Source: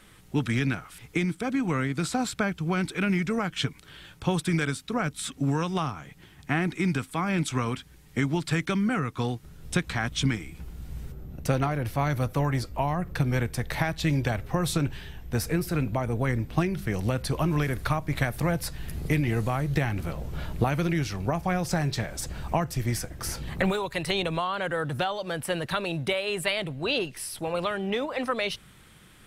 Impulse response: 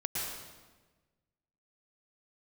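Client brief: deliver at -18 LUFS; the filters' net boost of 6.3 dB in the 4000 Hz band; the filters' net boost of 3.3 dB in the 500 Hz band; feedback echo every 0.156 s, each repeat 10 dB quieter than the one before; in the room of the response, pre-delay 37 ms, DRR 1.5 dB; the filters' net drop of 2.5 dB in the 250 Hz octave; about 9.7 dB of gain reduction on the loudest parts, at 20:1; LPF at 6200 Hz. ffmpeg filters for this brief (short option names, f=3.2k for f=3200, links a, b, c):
-filter_complex "[0:a]lowpass=6.2k,equalizer=f=250:t=o:g=-5.5,equalizer=f=500:t=o:g=5.5,equalizer=f=4k:t=o:g=8.5,acompressor=threshold=-29dB:ratio=20,aecho=1:1:156|312|468|624:0.316|0.101|0.0324|0.0104,asplit=2[a][b];[1:a]atrim=start_sample=2205,adelay=37[c];[b][c]afir=irnorm=-1:irlink=0,volume=-6dB[d];[a][d]amix=inputs=2:normalize=0,volume=13.5dB"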